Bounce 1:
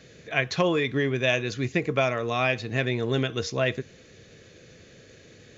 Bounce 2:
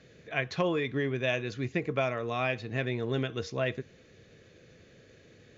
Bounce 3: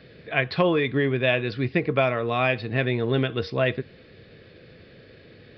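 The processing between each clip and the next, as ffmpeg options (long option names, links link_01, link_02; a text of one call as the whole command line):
ffmpeg -i in.wav -af "lowpass=frequency=3400:poles=1,volume=-5dB" out.wav
ffmpeg -i in.wav -af "aresample=11025,aresample=44100,volume=7.5dB" out.wav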